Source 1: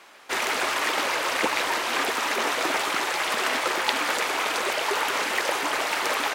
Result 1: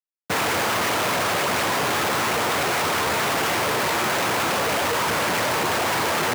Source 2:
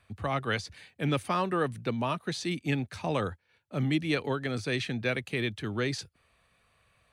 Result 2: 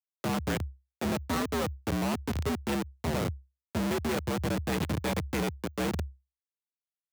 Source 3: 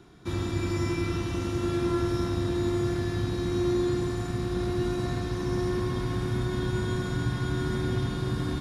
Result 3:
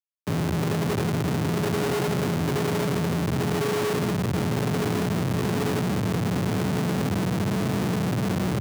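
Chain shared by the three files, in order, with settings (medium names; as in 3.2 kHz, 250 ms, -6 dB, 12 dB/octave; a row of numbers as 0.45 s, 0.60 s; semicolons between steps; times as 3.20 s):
Schmitt trigger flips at -28 dBFS; frequency shift +66 Hz; trim +3.5 dB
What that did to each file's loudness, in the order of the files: +3.0 LU, -0.5 LU, +3.5 LU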